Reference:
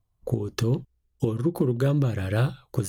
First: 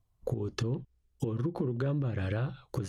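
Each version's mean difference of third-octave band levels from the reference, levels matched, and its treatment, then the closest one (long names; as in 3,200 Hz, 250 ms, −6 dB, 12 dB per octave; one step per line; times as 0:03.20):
3.5 dB: treble cut that deepens with the level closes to 2,800 Hz, closed at −20.5 dBFS
brickwall limiter −16.5 dBFS, peak gain reduction 6.5 dB
downward compressor, threshold −28 dBFS, peak gain reduction 8 dB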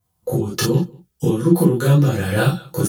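6.0 dB: high-pass filter 75 Hz
high-shelf EQ 6,300 Hz +10.5 dB
slap from a distant wall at 32 metres, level −26 dB
reverb whose tail is shaped and stops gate 80 ms flat, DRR −8 dB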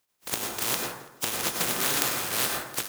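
19.5 dB: compressing power law on the bin magnitudes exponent 0.12
high-pass filter 120 Hz 6 dB per octave
on a send: repeating echo 167 ms, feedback 31%, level −18.5 dB
on the sum: dense smooth reverb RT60 0.9 s, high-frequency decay 0.35×, pre-delay 85 ms, DRR 0.5 dB
level −5 dB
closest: first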